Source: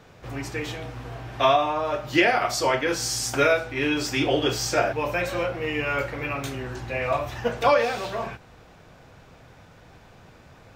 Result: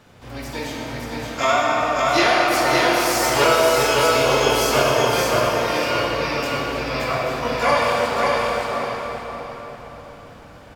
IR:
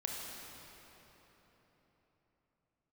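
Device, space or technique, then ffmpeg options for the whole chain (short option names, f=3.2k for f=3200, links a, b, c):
shimmer-style reverb: -filter_complex "[0:a]asplit=3[a][b][c];[a]afade=t=out:st=3.13:d=0.02[d];[b]aecho=1:1:1.9:0.7,afade=t=in:st=3.13:d=0.02,afade=t=out:st=4.91:d=0.02[e];[c]afade=t=in:st=4.91:d=0.02[f];[d][e][f]amix=inputs=3:normalize=0,asplit=2[g][h];[h]asetrate=88200,aresample=44100,atempo=0.5,volume=-4dB[i];[g][i]amix=inputs=2:normalize=0[j];[1:a]atrim=start_sample=2205[k];[j][k]afir=irnorm=-1:irlink=0,aecho=1:1:572|1144|1716|2288:0.708|0.184|0.0479|0.0124"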